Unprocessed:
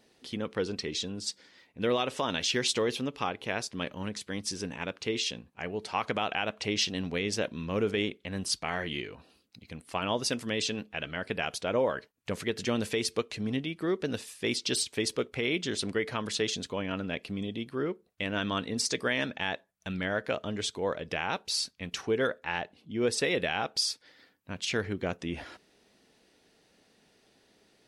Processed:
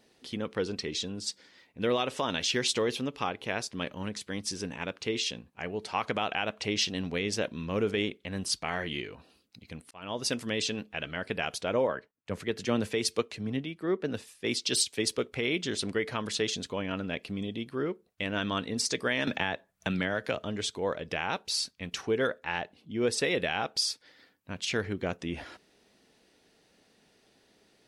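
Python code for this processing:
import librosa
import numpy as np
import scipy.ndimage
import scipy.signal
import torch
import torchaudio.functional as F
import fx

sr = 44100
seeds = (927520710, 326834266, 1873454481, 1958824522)

y = fx.auto_swell(x, sr, attack_ms=413.0, at=(9.84, 10.25))
y = fx.band_widen(y, sr, depth_pct=70, at=(11.87, 15.18))
y = fx.band_squash(y, sr, depth_pct=100, at=(19.27, 20.44))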